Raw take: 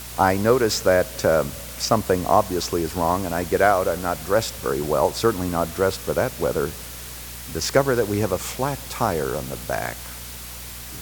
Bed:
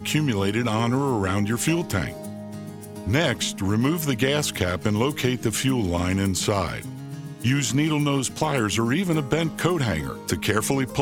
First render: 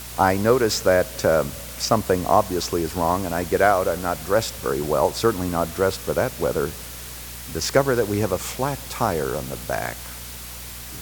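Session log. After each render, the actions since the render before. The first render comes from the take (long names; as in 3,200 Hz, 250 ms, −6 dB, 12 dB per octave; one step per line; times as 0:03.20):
no processing that can be heard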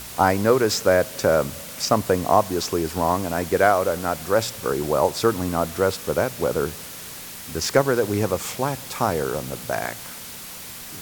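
hum removal 60 Hz, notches 2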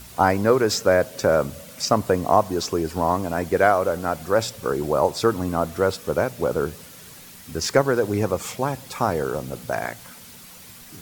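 broadband denoise 8 dB, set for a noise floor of −37 dBFS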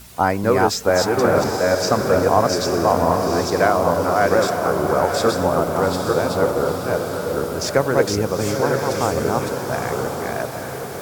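delay that plays each chunk backwards 438 ms, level −1 dB
on a send: feedback delay with all-pass diffusion 872 ms, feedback 43%, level −5 dB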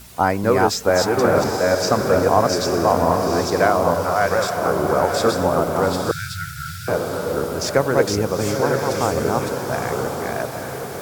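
0:03.94–0:04.55: parametric band 300 Hz −6.5 dB → −14.5 dB 0.97 octaves
0:06.11–0:06.88: linear-phase brick-wall band-stop 160–1,300 Hz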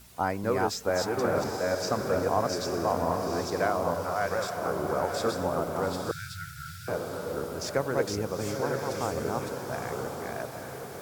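level −10.5 dB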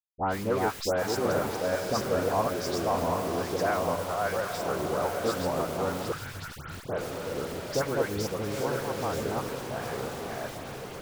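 hold until the input has moved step −34.5 dBFS
all-pass dispersion highs, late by 134 ms, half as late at 2,100 Hz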